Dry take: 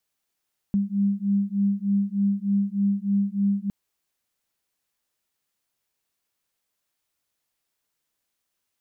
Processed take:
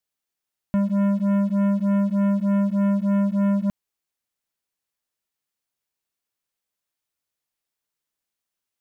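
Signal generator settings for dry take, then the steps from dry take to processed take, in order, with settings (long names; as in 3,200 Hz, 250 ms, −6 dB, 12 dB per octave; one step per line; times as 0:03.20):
two tones that beat 198 Hz, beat 3.3 Hz, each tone −23.5 dBFS 2.96 s
leveller curve on the samples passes 3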